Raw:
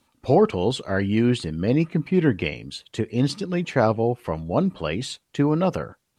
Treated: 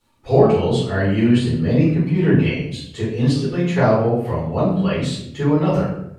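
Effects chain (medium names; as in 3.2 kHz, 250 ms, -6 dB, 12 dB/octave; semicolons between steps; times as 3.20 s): simulated room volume 160 m³, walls mixed, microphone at 4.1 m; trim -9.5 dB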